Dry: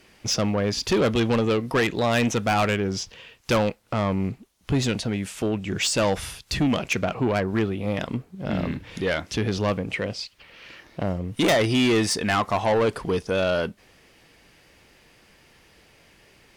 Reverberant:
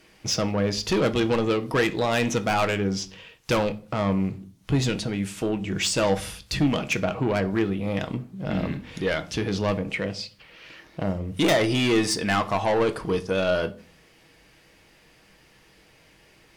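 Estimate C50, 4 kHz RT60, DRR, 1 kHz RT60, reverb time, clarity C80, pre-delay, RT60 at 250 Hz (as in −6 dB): 17.5 dB, 0.30 s, 8.5 dB, 0.40 s, 0.40 s, 22.5 dB, 6 ms, 0.60 s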